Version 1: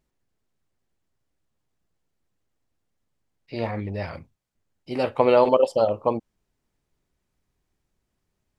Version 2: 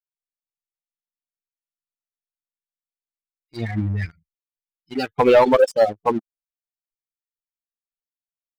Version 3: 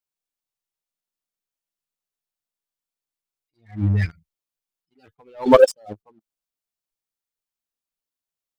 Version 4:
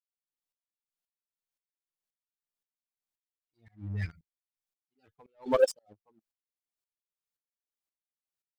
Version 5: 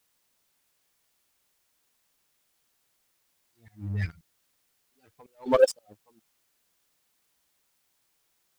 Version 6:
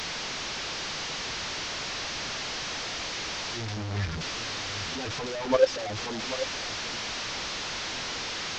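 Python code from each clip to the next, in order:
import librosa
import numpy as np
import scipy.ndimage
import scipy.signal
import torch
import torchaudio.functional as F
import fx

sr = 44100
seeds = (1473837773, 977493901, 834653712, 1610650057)

y1 = fx.bin_expand(x, sr, power=3.0)
y1 = fx.leveller(y1, sr, passes=2)
y1 = y1 * librosa.db_to_amplitude(3.5)
y2 = fx.peak_eq(y1, sr, hz=1900.0, db=-3.0, octaves=0.77)
y2 = fx.attack_slew(y2, sr, db_per_s=200.0)
y2 = y2 * librosa.db_to_amplitude(5.0)
y3 = fx.tremolo_decay(y2, sr, direction='swelling', hz=1.9, depth_db=27)
y3 = y3 * librosa.db_to_amplitude(-2.0)
y4 = fx.dmg_noise_colour(y3, sr, seeds[0], colour='white', level_db=-77.0)
y4 = y4 * librosa.db_to_amplitude(4.0)
y5 = fx.delta_mod(y4, sr, bps=32000, step_db=-25.5)
y5 = y5 + 10.0 ** (-12.5 / 20.0) * np.pad(y5, (int(789 * sr / 1000.0), 0))[:len(y5)]
y5 = y5 * librosa.db_to_amplitude(-1.5)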